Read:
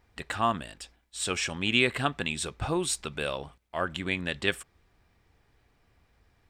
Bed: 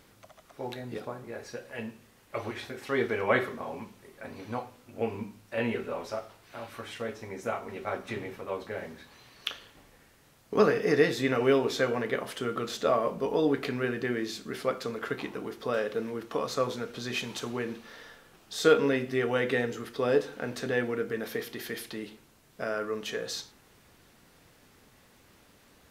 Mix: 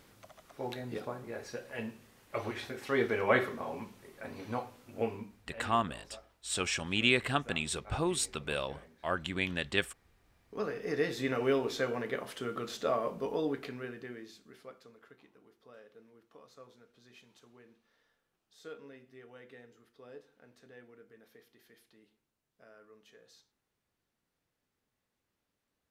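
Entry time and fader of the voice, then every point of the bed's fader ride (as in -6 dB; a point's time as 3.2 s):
5.30 s, -3.0 dB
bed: 5.01 s -1.5 dB
5.61 s -17 dB
10.38 s -17 dB
11.22 s -5.5 dB
13.27 s -5.5 dB
15.16 s -25.5 dB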